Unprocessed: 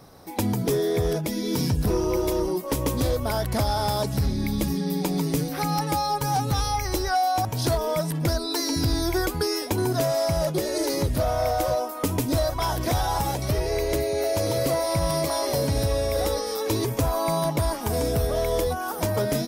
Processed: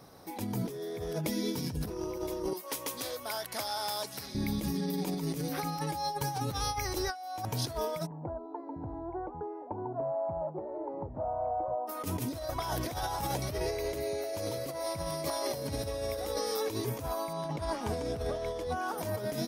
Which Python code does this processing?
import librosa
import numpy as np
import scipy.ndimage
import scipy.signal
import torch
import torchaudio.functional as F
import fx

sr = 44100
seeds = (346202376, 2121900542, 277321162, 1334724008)

y = fx.highpass(x, sr, hz=1400.0, slope=6, at=(2.53, 4.35))
y = fx.notch_comb(y, sr, f0_hz=250.0, at=(5.86, 6.41))
y = fx.ladder_lowpass(y, sr, hz=950.0, resonance_pct=65, at=(8.05, 11.87), fade=0.02)
y = fx.air_absorb(y, sr, metres=60.0, at=(17.33, 18.98))
y = fx.low_shelf(y, sr, hz=62.0, db=-10.5)
y = fx.notch(y, sr, hz=7600.0, q=16.0)
y = fx.over_compress(y, sr, threshold_db=-27.0, ratio=-0.5)
y = y * 10.0 ** (-6.0 / 20.0)